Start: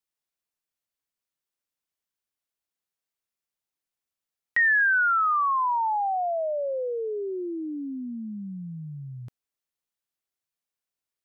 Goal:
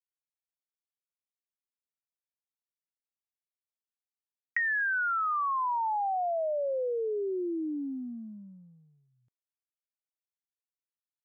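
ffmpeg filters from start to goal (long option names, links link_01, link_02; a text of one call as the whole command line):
ffmpeg -i in.wav -af "agate=range=-33dB:threshold=-34dB:ratio=16:detection=peak,acompressor=threshold=-28dB:ratio=6" out.wav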